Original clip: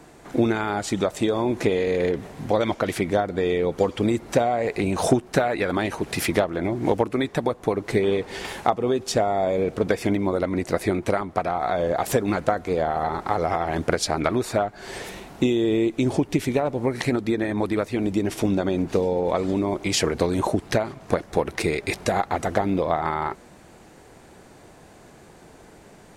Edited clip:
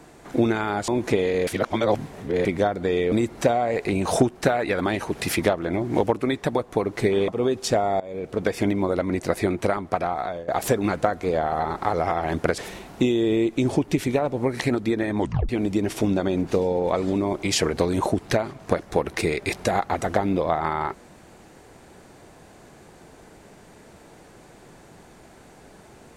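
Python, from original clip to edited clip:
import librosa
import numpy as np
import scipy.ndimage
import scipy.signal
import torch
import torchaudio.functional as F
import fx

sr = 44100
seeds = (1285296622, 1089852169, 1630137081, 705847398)

y = fx.edit(x, sr, fx.cut(start_s=0.88, length_s=0.53),
    fx.reverse_span(start_s=2.0, length_s=0.98),
    fx.cut(start_s=3.65, length_s=0.38),
    fx.cut(start_s=8.19, length_s=0.53),
    fx.fade_in_from(start_s=9.44, length_s=0.57, floor_db=-20.0),
    fx.fade_out_to(start_s=11.51, length_s=0.41, floor_db=-19.5),
    fx.cut(start_s=14.02, length_s=0.97),
    fx.tape_stop(start_s=17.6, length_s=0.3), tone=tone)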